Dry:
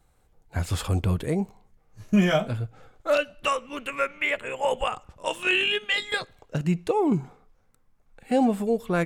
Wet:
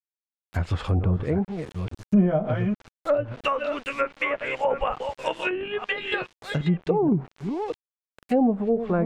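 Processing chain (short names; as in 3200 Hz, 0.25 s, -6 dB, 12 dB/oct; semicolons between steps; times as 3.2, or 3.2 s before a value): reverse delay 0.487 s, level -8 dB; sample gate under -40.5 dBFS; treble ducked by the level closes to 690 Hz, closed at -18.5 dBFS; gain +1.5 dB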